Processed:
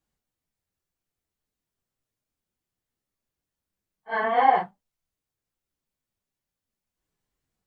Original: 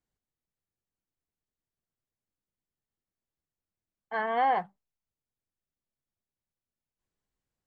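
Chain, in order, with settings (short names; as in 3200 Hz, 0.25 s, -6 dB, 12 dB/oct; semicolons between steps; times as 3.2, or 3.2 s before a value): phase scrambler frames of 0.1 s; gain +5.5 dB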